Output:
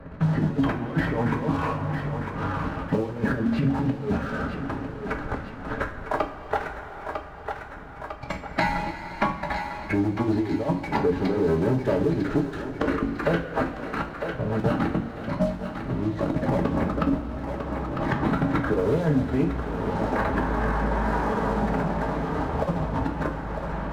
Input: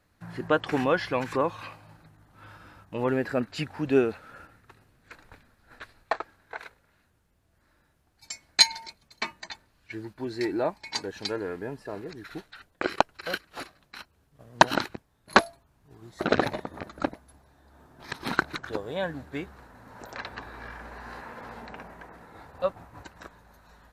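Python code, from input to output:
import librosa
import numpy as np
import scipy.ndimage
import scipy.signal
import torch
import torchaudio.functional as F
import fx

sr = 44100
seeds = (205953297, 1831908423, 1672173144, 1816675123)

y = scipy.signal.sosfilt(scipy.signal.butter(2, 1300.0, 'lowpass', fs=sr, output='sos'), x)
y = fx.low_shelf(y, sr, hz=350.0, db=9.5)
y = fx.hum_notches(y, sr, base_hz=50, count=6)
y = fx.over_compress(y, sr, threshold_db=-30.0, ratio=-0.5)
y = fx.leveller(y, sr, passes=2)
y = 10.0 ** (-13.5 / 20.0) * np.tanh(y / 10.0 ** (-13.5 / 20.0))
y = fx.pitch_keep_formants(y, sr, semitones=-1.5)
y = fx.echo_thinned(y, sr, ms=951, feedback_pct=39, hz=420.0, wet_db=-12.5)
y = fx.rev_double_slope(y, sr, seeds[0], early_s=0.32, late_s=2.6, knee_db=-16, drr_db=1.5)
y = fx.band_squash(y, sr, depth_pct=70)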